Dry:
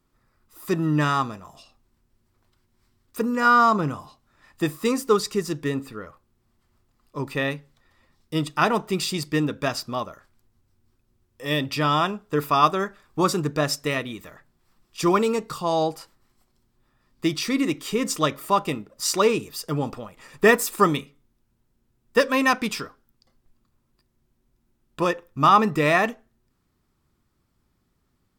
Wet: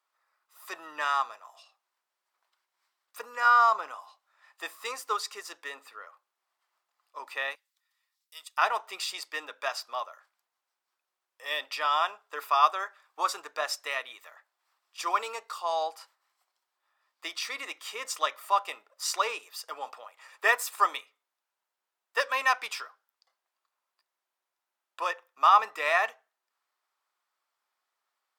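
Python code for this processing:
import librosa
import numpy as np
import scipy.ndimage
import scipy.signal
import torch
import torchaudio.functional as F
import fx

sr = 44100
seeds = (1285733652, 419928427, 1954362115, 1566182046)

y = fx.differentiator(x, sr, at=(7.55, 8.58))
y = scipy.signal.sosfilt(scipy.signal.butter(4, 690.0, 'highpass', fs=sr, output='sos'), y)
y = fx.high_shelf(y, sr, hz=5100.0, db=-6.0)
y = F.gain(torch.from_numpy(y), -3.0).numpy()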